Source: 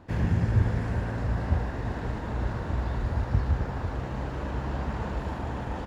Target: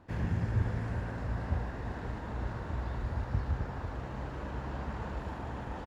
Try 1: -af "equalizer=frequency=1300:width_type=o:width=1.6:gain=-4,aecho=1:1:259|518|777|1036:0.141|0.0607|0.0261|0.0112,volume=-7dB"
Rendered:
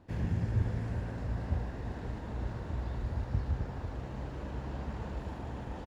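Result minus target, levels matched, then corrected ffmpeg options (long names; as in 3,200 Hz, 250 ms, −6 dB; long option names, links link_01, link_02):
1,000 Hz band −4.0 dB
-af "equalizer=frequency=1300:width_type=o:width=1.6:gain=2,aecho=1:1:259|518|777|1036:0.141|0.0607|0.0261|0.0112,volume=-7dB"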